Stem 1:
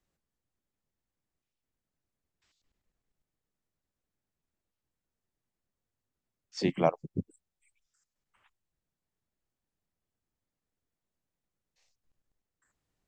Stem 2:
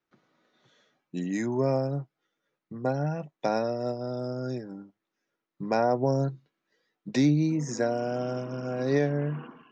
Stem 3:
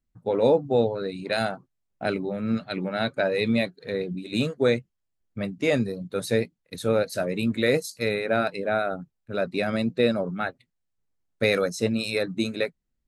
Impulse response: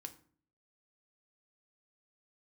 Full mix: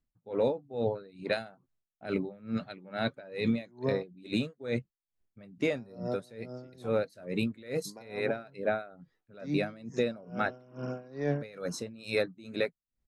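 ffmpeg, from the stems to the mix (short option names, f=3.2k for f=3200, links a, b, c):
-filter_complex "[0:a]aemphasis=mode=reproduction:type=75fm,asplit=2[a][b];[b]adelay=2.9,afreqshift=-0.5[c];[a][c]amix=inputs=2:normalize=1,volume=-12.5dB[d];[1:a]adelay=2250,volume=0dB,asplit=3[e][f][g];[e]atrim=end=4.03,asetpts=PTS-STARTPTS,afade=t=out:st=4.026:d=0.004:c=hsin[h];[f]atrim=start=4.03:end=5.71,asetpts=PTS-STARTPTS,volume=0[i];[g]atrim=start=5.71,asetpts=PTS-STARTPTS,afade=t=in:d=0.004:c=hsin[j];[h][i][j]concat=n=3:v=0:a=1[k];[2:a]volume=0dB,asplit=2[l][m];[m]apad=whole_len=527759[n];[k][n]sidechaincompress=threshold=-34dB:ratio=8:attack=39:release=282[o];[o][l]amix=inputs=2:normalize=0,highshelf=f=5.6k:g=-8,alimiter=limit=-17.5dB:level=0:latency=1:release=19,volume=0dB[p];[d][p]amix=inputs=2:normalize=0,aeval=exprs='val(0)*pow(10,-23*(0.5-0.5*cos(2*PI*2.3*n/s))/20)':c=same"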